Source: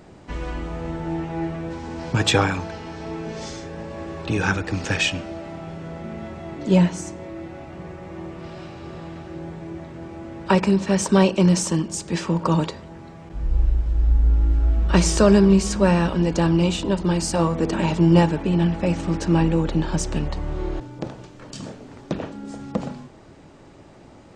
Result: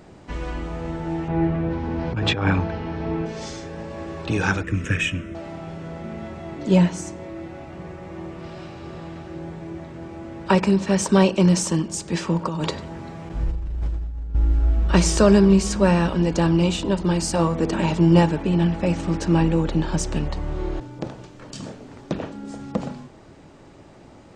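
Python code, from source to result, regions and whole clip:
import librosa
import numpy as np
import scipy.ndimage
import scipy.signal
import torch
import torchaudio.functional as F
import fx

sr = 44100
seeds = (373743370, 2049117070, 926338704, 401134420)

y = fx.chain(x, sr, fx.lowpass(hz=3000.0, slope=12),
    fx.low_shelf(hz=340.0, db=6.5),
    fx.over_compress(threshold_db=-18.0, ratio=-0.5), at=(1.28, 3.26))
y = fx.chain(y, sr, fx.peak_eq(hz=86.0, db=4.0, octaves=2.7),
    fx.fixed_phaser(hz=1900.0, stages=4), at=(4.63, 5.35))
y = fx.chain(y, sr, fx.highpass(hz=42.0, slope=12),
    fx.over_compress(threshold_db=-25.0, ratio=-1.0),
    fx.echo_single(ms=96, db=-17.0), at=(12.44, 14.35))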